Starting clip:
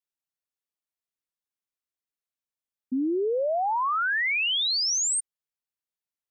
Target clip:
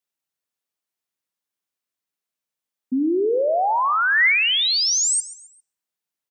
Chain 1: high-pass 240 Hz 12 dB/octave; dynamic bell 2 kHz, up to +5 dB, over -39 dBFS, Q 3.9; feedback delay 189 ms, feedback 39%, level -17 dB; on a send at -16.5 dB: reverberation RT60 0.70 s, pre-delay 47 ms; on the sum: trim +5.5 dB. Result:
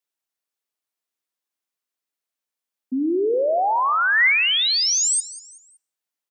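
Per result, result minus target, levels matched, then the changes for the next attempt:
echo 55 ms late; 125 Hz band -3.5 dB
change: feedback delay 134 ms, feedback 39%, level -17 dB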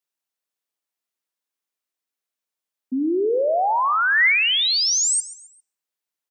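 125 Hz band -3.5 dB
change: high-pass 110 Hz 12 dB/octave

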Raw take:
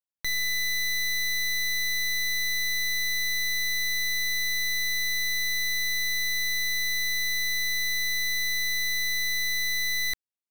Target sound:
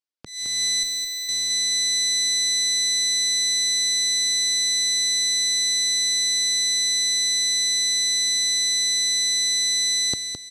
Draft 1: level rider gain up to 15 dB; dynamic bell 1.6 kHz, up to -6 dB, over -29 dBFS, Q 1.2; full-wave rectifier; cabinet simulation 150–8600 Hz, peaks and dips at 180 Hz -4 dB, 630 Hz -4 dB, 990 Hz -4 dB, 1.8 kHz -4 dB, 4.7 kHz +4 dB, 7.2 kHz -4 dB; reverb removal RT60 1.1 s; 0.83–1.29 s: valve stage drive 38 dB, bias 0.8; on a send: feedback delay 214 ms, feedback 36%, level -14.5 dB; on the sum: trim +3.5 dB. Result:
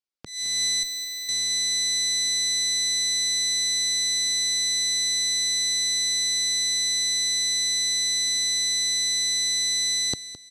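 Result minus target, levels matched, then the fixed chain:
echo-to-direct -8 dB
level rider gain up to 15 dB; dynamic bell 1.6 kHz, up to -6 dB, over -29 dBFS, Q 1.2; full-wave rectifier; cabinet simulation 150–8600 Hz, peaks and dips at 180 Hz -4 dB, 630 Hz -4 dB, 990 Hz -4 dB, 1.8 kHz -4 dB, 4.7 kHz +4 dB, 7.2 kHz -4 dB; reverb removal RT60 1.1 s; 0.83–1.29 s: valve stage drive 38 dB, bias 0.8; on a send: feedback delay 214 ms, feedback 36%, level -6.5 dB; on the sum: trim +3.5 dB

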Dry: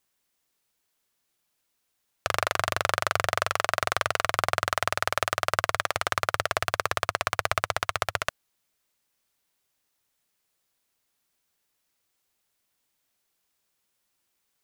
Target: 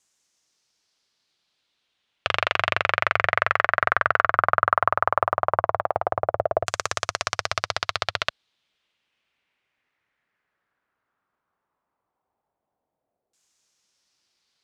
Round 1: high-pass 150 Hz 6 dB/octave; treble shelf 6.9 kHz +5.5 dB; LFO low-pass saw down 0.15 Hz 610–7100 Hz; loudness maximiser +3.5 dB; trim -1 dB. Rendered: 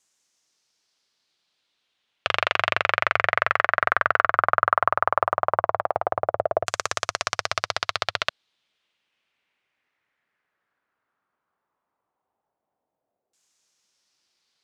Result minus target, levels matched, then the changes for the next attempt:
125 Hz band -3.5 dB
change: high-pass 54 Hz 6 dB/octave

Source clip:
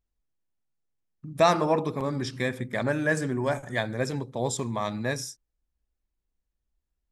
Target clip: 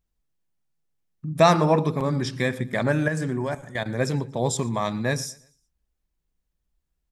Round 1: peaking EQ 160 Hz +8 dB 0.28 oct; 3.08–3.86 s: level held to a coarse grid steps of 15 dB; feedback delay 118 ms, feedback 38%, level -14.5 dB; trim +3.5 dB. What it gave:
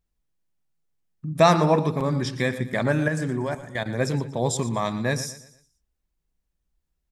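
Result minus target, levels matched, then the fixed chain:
echo-to-direct +8 dB
peaking EQ 160 Hz +8 dB 0.28 oct; 3.08–3.86 s: level held to a coarse grid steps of 15 dB; feedback delay 118 ms, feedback 38%, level -22.5 dB; trim +3.5 dB

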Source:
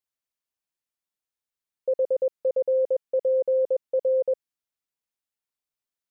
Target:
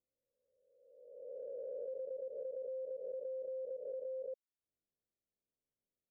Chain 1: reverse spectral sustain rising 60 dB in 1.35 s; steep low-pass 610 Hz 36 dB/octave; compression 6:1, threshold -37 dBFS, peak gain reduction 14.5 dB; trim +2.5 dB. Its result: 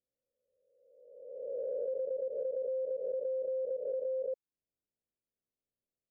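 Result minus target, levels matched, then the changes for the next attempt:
compression: peak gain reduction -7.5 dB
change: compression 6:1, threshold -46 dBFS, peak gain reduction 22 dB

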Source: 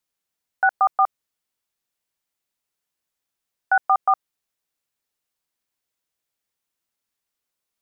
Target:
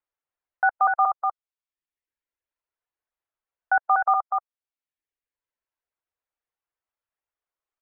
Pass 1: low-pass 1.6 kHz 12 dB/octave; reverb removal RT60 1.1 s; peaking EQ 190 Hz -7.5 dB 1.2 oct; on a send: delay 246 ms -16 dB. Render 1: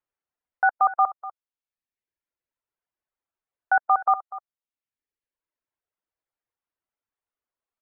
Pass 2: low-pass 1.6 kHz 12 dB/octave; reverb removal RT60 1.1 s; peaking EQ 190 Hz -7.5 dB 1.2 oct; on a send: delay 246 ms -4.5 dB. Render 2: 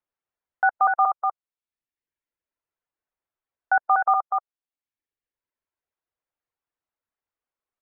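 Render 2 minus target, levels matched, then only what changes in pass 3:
250 Hz band +3.5 dB
change: peaking EQ 190 Hz -17.5 dB 1.2 oct

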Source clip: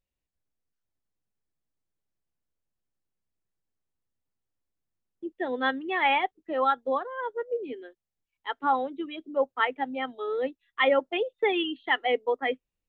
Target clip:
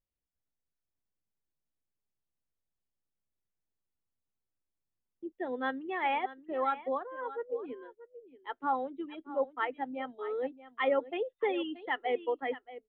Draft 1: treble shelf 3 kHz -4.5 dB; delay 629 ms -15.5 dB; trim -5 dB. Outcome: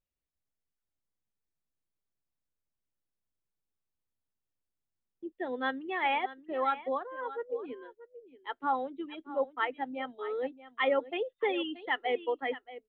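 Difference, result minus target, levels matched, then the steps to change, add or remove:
4 kHz band +4.0 dB
change: treble shelf 3 kHz -14 dB

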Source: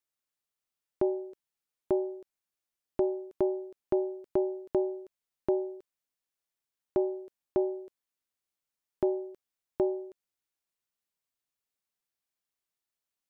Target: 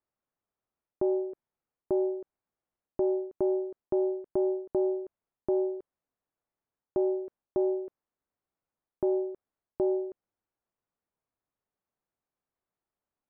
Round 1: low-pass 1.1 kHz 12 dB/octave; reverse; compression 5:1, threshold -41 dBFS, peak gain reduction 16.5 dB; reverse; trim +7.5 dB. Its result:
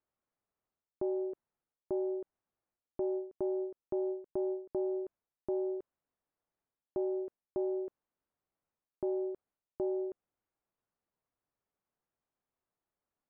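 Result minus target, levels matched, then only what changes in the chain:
compression: peak gain reduction +7 dB
change: compression 5:1, threshold -32.5 dBFS, peak gain reduction 9.5 dB

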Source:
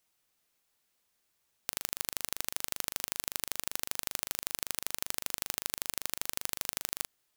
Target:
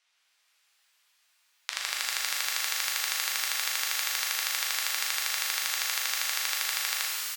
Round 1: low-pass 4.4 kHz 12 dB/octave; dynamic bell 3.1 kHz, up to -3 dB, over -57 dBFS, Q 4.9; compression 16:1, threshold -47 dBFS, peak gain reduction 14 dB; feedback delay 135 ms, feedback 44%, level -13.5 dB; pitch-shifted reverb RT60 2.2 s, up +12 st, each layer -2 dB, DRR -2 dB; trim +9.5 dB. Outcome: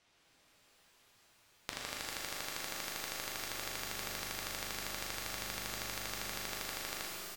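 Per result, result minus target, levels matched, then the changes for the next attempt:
compression: peak gain reduction +14 dB; 1 kHz band +5.0 dB
remove: compression 16:1, threshold -47 dBFS, peak gain reduction 14 dB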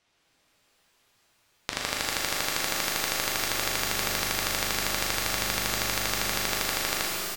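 1 kHz band +5.0 dB
add after dynamic bell: high-pass 1.3 kHz 12 dB/octave

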